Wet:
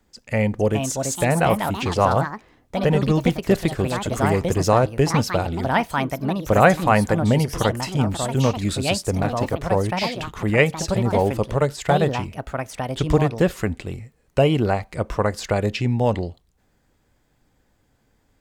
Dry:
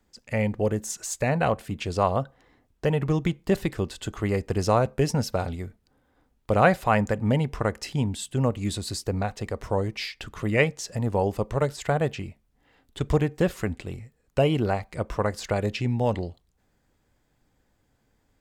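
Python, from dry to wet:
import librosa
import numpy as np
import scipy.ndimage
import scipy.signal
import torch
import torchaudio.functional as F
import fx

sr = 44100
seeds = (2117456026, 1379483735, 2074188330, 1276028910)

y = fx.echo_pitch(x, sr, ms=485, semitones=4, count=2, db_per_echo=-6.0)
y = F.gain(torch.from_numpy(y), 4.5).numpy()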